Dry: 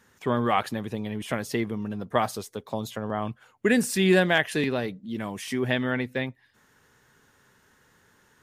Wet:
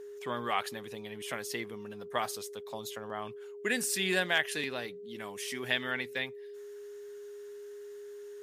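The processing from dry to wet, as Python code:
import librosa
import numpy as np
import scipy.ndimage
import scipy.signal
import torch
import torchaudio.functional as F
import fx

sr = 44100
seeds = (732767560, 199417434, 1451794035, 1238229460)

y = fx.high_shelf(x, sr, hz=2000.0, db=fx.steps((0.0, 6.5), (5.54, 11.5)))
y = y + 10.0 ** (-30.0 / 20.0) * np.sin(2.0 * np.pi * 410.0 * np.arange(len(y)) / sr)
y = fx.low_shelf(y, sr, hz=450.0, db=-10.5)
y = y * 10.0 ** (-7.0 / 20.0)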